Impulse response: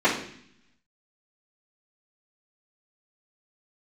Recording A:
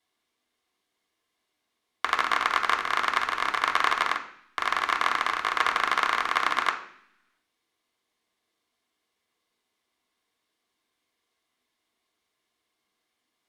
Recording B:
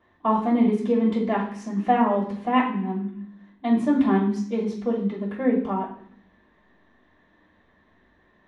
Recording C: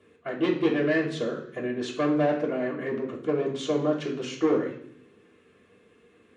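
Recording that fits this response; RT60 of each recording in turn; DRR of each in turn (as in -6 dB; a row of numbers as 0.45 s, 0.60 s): B; 0.60 s, 0.60 s, 0.60 s; 1.0 dB, -13.0 dB, -6.5 dB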